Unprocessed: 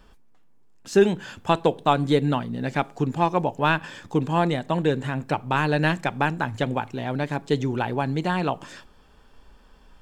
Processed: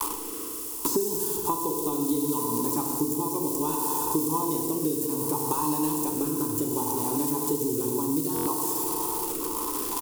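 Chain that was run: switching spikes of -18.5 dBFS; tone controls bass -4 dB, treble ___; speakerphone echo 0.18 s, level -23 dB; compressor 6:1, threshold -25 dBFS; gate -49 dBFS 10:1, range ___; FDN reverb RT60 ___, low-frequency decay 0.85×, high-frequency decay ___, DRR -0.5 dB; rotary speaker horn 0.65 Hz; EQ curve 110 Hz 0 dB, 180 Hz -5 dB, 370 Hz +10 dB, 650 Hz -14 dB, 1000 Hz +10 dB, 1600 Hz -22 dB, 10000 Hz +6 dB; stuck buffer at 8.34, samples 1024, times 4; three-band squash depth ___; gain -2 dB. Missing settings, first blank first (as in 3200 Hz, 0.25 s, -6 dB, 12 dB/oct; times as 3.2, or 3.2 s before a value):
+3 dB, -32 dB, 2.4 s, 1×, 100%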